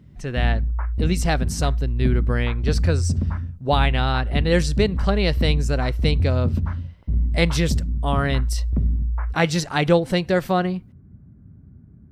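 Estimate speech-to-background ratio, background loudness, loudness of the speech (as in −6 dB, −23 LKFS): 0.5 dB, −24.5 LKFS, −24.0 LKFS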